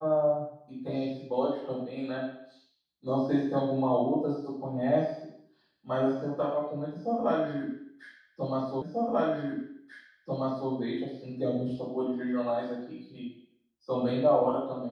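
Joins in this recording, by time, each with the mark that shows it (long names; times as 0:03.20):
0:08.82: the same again, the last 1.89 s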